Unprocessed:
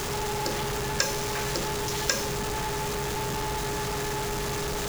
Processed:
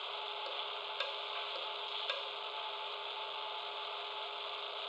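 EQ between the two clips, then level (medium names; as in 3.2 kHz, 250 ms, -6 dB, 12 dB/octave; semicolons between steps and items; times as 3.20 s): resonant high-pass 740 Hz, resonance Q 4.9; four-pole ladder low-pass 3.8 kHz, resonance 70%; static phaser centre 1.2 kHz, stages 8; 0.0 dB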